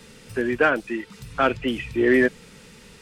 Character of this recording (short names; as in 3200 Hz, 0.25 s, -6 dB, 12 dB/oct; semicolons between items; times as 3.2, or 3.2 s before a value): noise floor -49 dBFS; spectral tilt -3.5 dB/oct